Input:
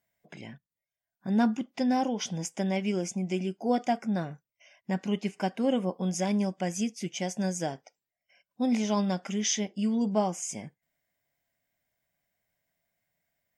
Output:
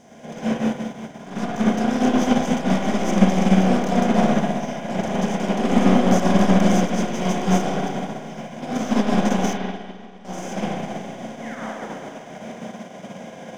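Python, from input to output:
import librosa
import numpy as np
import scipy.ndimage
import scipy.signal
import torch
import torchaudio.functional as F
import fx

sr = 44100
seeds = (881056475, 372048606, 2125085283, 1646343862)

y = fx.bin_compress(x, sr, power=0.2)
y = fx.peak_eq(y, sr, hz=87.0, db=7.0, octaves=2.6)
y = fx.leveller(y, sr, passes=3)
y = fx.level_steps(y, sr, step_db=24, at=(9.53, 10.25))
y = fx.spec_paint(y, sr, seeds[0], shape='fall', start_s=11.41, length_s=0.54, low_hz=230.0, high_hz=2300.0, level_db=-19.0)
y = fx.rev_spring(y, sr, rt60_s=3.6, pass_ms=(32, 49, 58), chirp_ms=65, drr_db=-9.0)
y = fx.upward_expand(y, sr, threshold_db=-12.0, expansion=2.5)
y = F.gain(torch.from_numpy(y), -12.0).numpy()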